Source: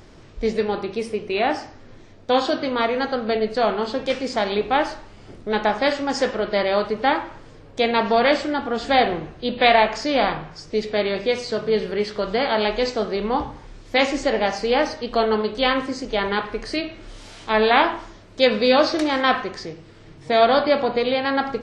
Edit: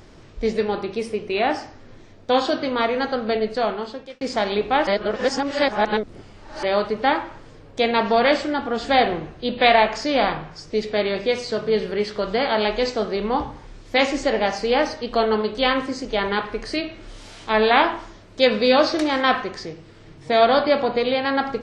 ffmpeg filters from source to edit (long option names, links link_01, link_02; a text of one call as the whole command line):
ffmpeg -i in.wav -filter_complex "[0:a]asplit=4[link_01][link_02][link_03][link_04];[link_01]atrim=end=4.21,asetpts=PTS-STARTPTS,afade=type=out:start_time=3.18:duration=1.03:curve=qsin[link_05];[link_02]atrim=start=4.21:end=4.872,asetpts=PTS-STARTPTS,afade=type=in:duration=0.004:curve=hsin[link_06];[link_03]atrim=start=4.868:end=6.632,asetpts=PTS-STARTPTS,areverse[link_07];[link_04]atrim=start=6.628[link_08];[link_05][link_06]concat=n=2:v=0:a=1[link_09];[link_09][link_07]acrossfade=duration=0.004:curve1=hsin:curve2=hsin[link_10];[link_10][link_08]acrossfade=duration=0.004:curve1=hsin:curve2=hsin" out.wav